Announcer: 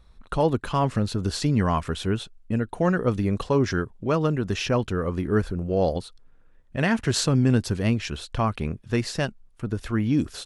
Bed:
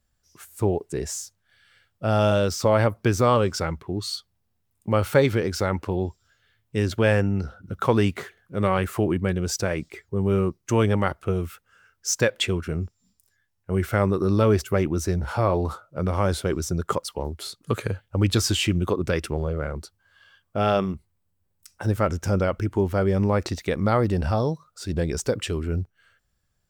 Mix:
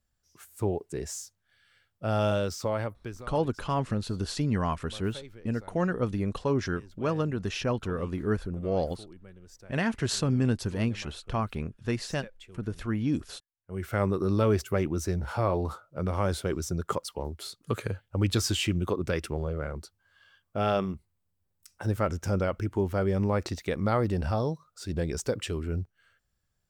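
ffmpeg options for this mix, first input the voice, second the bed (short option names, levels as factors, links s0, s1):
-filter_complex "[0:a]adelay=2950,volume=0.531[s0];[1:a]volume=5.96,afade=t=out:st=2.31:d=0.95:silence=0.0944061,afade=t=in:st=13.58:d=0.45:silence=0.0841395[s1];[s0][s1]amix=inputs=2:normalize=0"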